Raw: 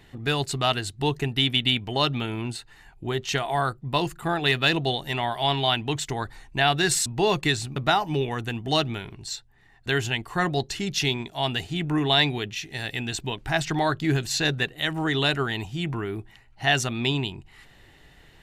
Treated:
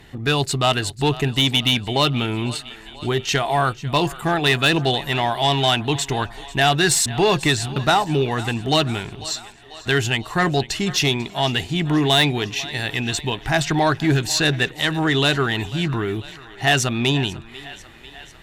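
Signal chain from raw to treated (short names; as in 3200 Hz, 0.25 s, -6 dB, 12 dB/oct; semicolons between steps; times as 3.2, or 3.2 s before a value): thinning echo 0.494 s, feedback 66%, high-pass 340 Hz, level -19 dB; added harmonics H 5 -18 dB, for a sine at -8 dBFS; gain +2.5 dB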